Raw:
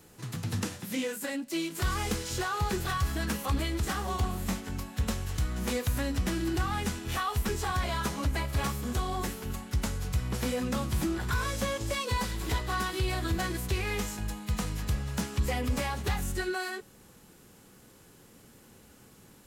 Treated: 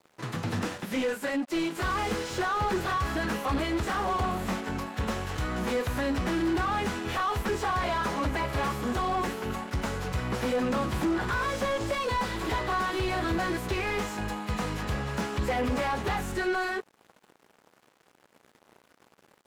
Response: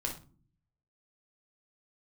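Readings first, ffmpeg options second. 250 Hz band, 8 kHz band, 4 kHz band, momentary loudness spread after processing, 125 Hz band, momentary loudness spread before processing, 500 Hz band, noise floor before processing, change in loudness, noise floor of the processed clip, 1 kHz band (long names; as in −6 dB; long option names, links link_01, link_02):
+3.0 dB, −4.5 dB, 0.0 dB, 4 LU, −2.5 dB, 4 LU, +5.5 dB, −56 dBFS, +2.5 dB, −66 dBFS, +6.0 dB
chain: -filter_complex "[0:a]aeval=exprs='sgn(val(0))*max(abs(val(0))-0.00266,0)':channel_layout=same,asplit=2[link_01][link_02];[link_02]highpass=frequency=720:poles=1,volume=24dB,asoftclip=type=tanh:threshold=-17.5dB[link_03];[link_01][link_03]amix=inputs=2:normalize=0,lowpass=frequency=1000:poles=1,volume=-6dB"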